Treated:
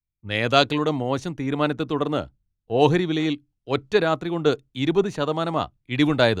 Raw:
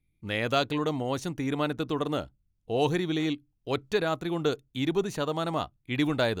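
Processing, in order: distance through air 50 m; three bands expanded up and down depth 70%; trim +6.5 dB

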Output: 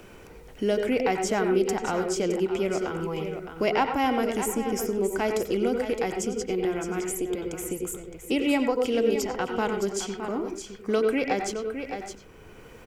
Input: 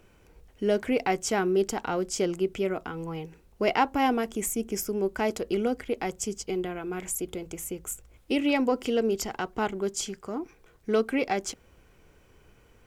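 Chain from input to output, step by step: delay 614 ms -11.5 dB; reverberation RT60 0.25 s, pre-delay 88 ms, DRR 5.5 dB; three bands compressed up and down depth 40%

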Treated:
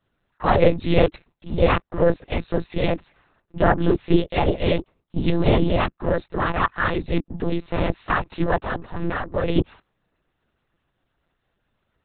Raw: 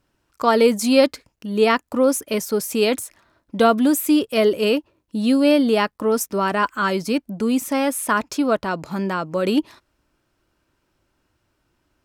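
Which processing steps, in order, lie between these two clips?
2.86–3.81 s: low-pass that closes with the level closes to 1.7 kHz, closed at -15 dBFS; noise-vocoded speech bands 12; monotone LPC vocoder at 8 kHz 170 Hz; trim -1 dB

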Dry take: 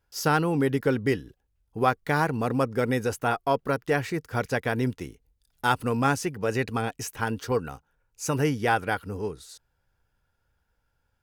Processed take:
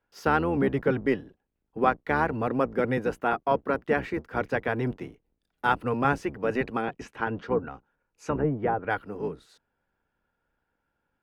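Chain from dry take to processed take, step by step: octave divider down 1 oct, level +1 dB; 6.83–8.90 s: low-pass that closes with the level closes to 750 Hz, closed at -18 dBFS; three-band isolator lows -14 dB, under 190 Hz, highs -18 dB, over 3.1 kHz

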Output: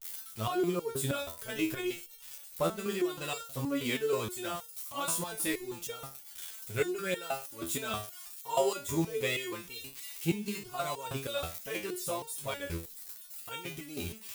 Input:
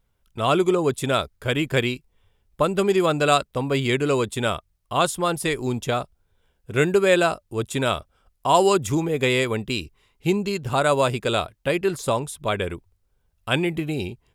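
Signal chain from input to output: zero-crossing glitches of -21 dBFS; de-hum 99.51 Hz, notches 10; resonator arpeggio 6.3 Hz 83–460 Hz

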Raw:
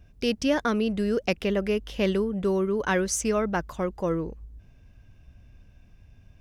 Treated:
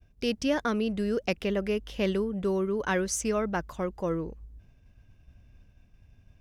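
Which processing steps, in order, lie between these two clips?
expander -49 dBFS; trim -3 dB

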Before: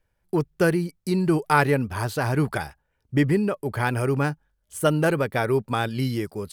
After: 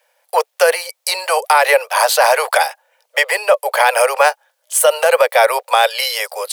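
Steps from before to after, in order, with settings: steep high-pass 500 Hz 96 dB/octave; peaking EQ 1.4 kHz -6 dB 0.78 oct; loudness maximiser +21.5 dB; trim -1 dB

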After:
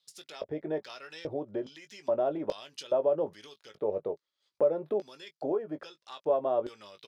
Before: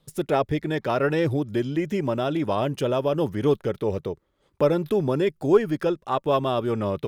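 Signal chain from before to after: compression 6:1, threshold -23 dBFS, peak gain reduction 11.5 dB; LFO band-pass square 1.2 Hz 600–4700 Hz; doubling 19 ms -10 dB; trim +2.5 dB

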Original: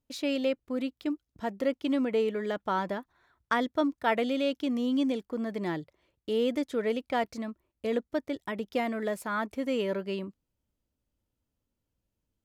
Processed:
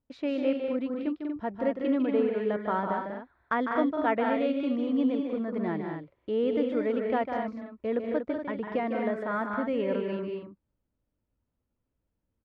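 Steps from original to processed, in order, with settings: low-pass 1.9 kHz 12 dB/octave; loudspeakers at several distances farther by 52 m -7 dB, 67 m -6 dB, 82 m -8 dB

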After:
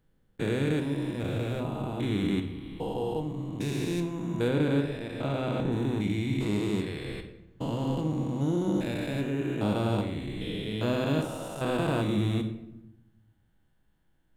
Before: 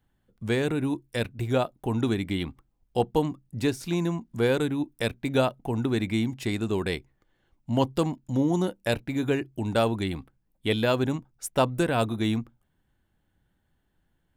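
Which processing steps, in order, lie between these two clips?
spectrogram pixelated in time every 400 ms; 4.48–5.72 s: treble shelf 5.6 kHz -9 dB; simulated room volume 270 m³, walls mixed, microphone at 0.62 m

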